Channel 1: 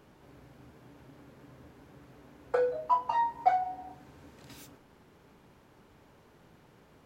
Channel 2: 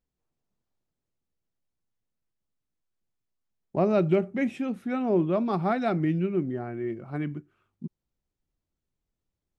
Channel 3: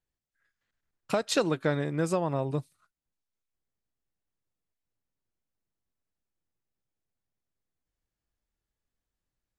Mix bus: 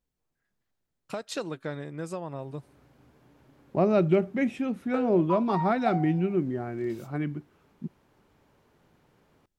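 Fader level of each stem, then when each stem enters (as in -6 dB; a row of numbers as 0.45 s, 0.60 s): -5.0 dB, +0.5 dB, -7.5 dB; 2.40 s, 0.00 s, 0.00 s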